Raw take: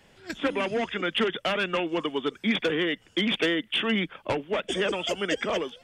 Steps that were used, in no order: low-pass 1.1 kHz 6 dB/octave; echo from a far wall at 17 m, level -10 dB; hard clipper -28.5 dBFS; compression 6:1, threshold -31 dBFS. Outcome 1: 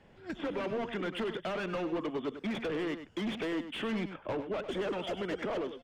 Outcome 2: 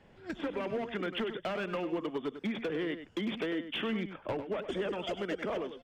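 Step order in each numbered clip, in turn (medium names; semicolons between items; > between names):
hard clipper > low-pass > compression > echo from a far wall; low-pass > compression > hard clipper > echo from a far wall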